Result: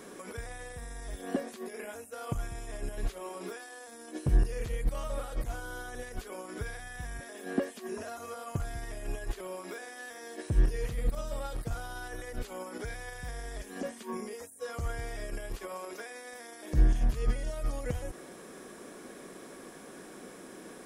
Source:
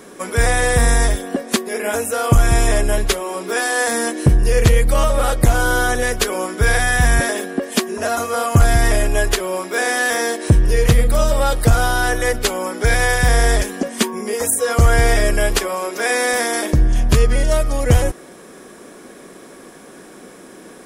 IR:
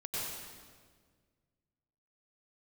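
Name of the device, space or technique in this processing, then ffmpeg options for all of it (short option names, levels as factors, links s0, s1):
de-esser from a sidechain: -filter_complex "[0:a]asettb=1/sr,asplit=3[s0][s1][s2];[s0]atrim=end=3.774[s3];[s1]atrim=start=3.77:end=4.3,asetpts=PTS-STARTPTS,afade=t=in:d=0.004:c=qsin,afade=t=out:st=0.526:d=0.004:c=qsin,equalizer=f=1900:w=4.8:g=-6[s4];[s2]atrim=start=4.296[s5];[s3][s4]acrossfade=d=0.004:c1=hsin:c2=qsin[s6];[s6][s5]acrossfade=d=0.004:c1=qsin:c2=hsin,asplit=2[s7][s8];[s8]highpass=5600,apad=whole_len=919654[s9];[s7][s9]sidechaincompress=threshold=0.00708:ratio=12:attack=1.6:release=40,volume=0.422"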